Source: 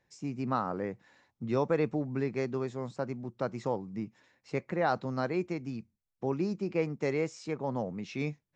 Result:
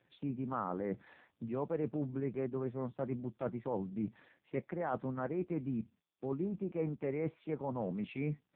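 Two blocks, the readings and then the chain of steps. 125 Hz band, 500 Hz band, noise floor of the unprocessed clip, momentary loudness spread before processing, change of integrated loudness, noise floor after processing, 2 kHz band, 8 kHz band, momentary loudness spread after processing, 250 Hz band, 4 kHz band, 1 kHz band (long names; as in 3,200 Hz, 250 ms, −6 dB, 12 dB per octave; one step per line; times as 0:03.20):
−4.0 dB, −5.5 dB, −83 dBFS, 9 LU, −5.0 dB, −81 dBFS, −10.5 dB, can't be measured, 5 LU, −3.5 dB, below −10 dB, −7.0 dB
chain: treble cut that deepens with the level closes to 2,000 Hz, closed at −30 dBFS
reversed playback
downward compressor 5 to 1, threshold −41 dBFS, peak gain reduction 16 dB
reversed playback
bad sample-rate conversion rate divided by 4×, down none, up zero stuff
level +7.5 dB
AMR narrowband 5.15 kbit/s 8,000 Hz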